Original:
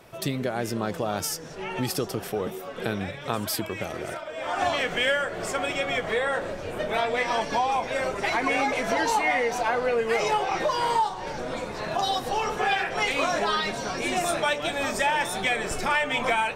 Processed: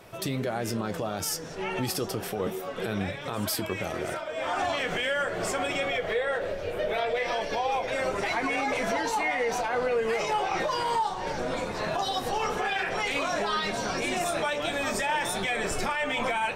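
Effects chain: 5.88–7.88 graphic EQ 125/250/500/1000/8000 Hz -4/-8/+5/-7/-8 dB; limiter -21 dBFS, peak gain reduction 10.5 dB; flange 0.13 Hz, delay 9.8 ms, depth 1.3 ms, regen -62%; gain +5.5 dB

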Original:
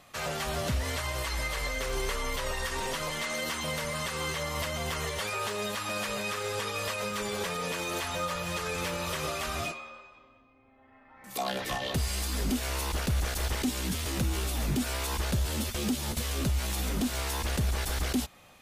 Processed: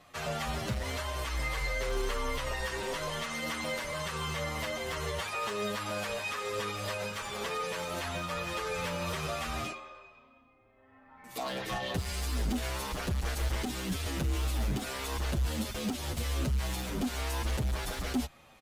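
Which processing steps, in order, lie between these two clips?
high shelf 4800 Hz -6 dB; overloaded stage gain 27 dB; endless flanger 7.9 ms -1 Hz; gain +2 dB

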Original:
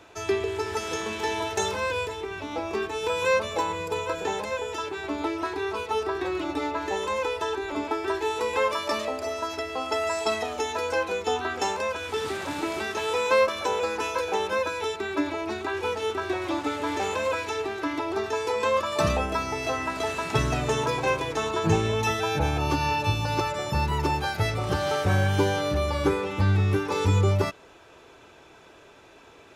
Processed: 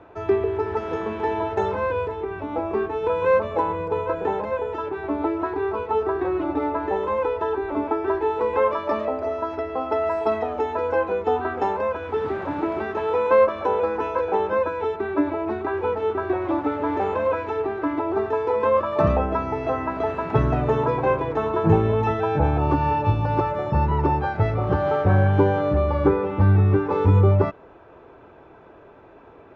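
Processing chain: LPF 1200 Hz 12 dB/oct; gain +5.5 dB

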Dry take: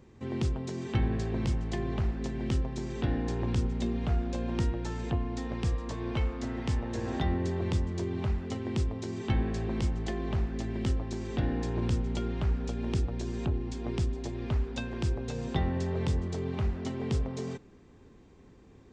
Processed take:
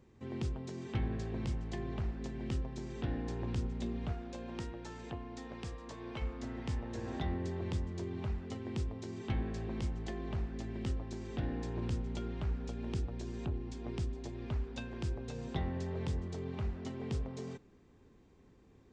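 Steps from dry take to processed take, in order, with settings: 4.12–6.22 low shelf 200 Hz -9.5 dB; Doppler distortion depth 0.11 ms; gain -7 dB

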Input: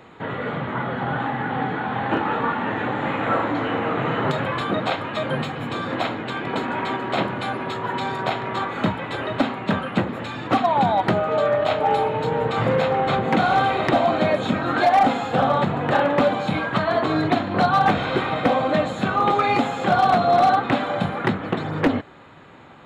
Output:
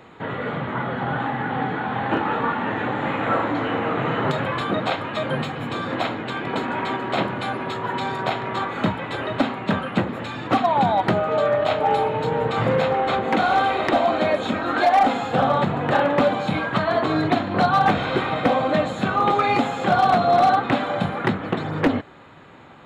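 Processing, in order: 12.93–15.13 bell 140 Hz -11 dB 0.74 oct

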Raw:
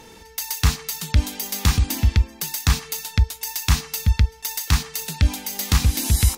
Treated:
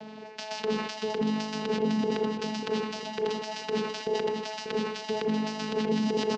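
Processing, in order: band inversion scrambler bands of 500 Hz; vocoder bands 8, saw 216 Hz; negative-ratio compressor -20 dBFS, ratio -0.5; notches 60/120/180/240/300/360/420 Hz; on a send at -12.5 dB: reverb, pre-delay 31 ms; on the sum: limiter -19.5 dBFS, peak gain reduction 9.5 dB; LPF 5100 Hz 24 dB/oct; feedback echo 0.589 s, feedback 41%, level -8 dB; sustainer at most 54 dB/s

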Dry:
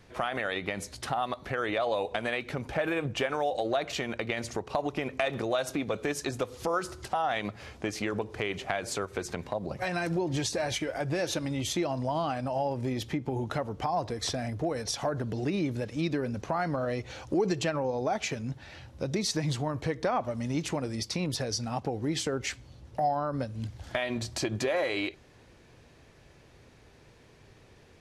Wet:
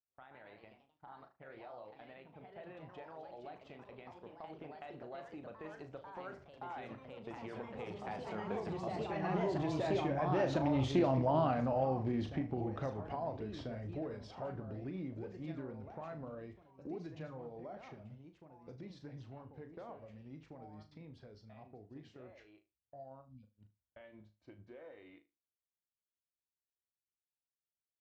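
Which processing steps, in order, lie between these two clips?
Doppler pass-by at 11.08, 25 m/s, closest 19 m; gate -56 dBFS, range -32 dB; spectral delete 23.21–23.44, 260–2200 Hz; echoes that change speed 0.148 s, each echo +2 st, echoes 3, each echo -6 dB; tape spacing loss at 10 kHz 32 dB; flutter echo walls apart 6.5 m, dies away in 0.25 s; Doppler distortion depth 0.14 ms; gain +1 dB

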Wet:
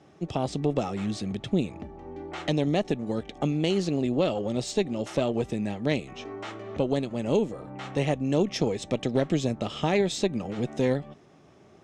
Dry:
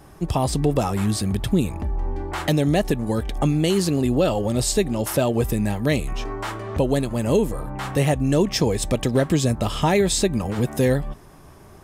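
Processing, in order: speaker cabinet 160–6200 Hz, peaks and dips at 1000 Hz -10 dB, 1600 Hz -6 dB, 4800 Hz -6 dB; added harmonics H 2 -13 dB, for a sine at -7.5 dBFS; gain -5 dB

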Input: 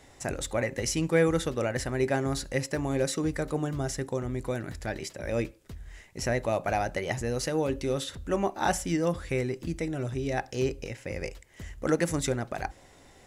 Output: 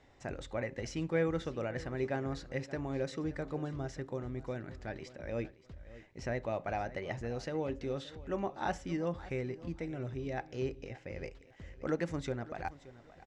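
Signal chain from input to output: air absorption 150 m; on a send: feedback echo 0.575 s, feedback 26%, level -17.5 dB; on the sum: stuck buffer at 11.47/12.65, samples 512, times 2; gain -7.5 dB

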